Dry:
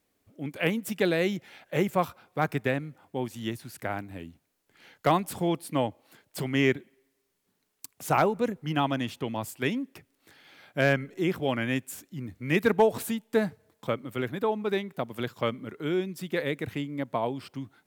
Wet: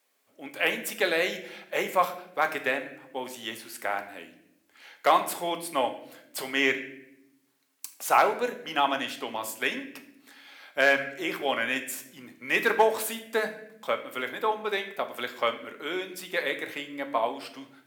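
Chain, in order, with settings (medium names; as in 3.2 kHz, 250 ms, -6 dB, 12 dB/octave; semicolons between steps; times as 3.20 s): high-pass 620 Hz 12 dB/octave; on a send: reverberation RT60 0.80 s, pre-delay 4 ms, DRR 5.5 dB; on the sum: trim +4 dB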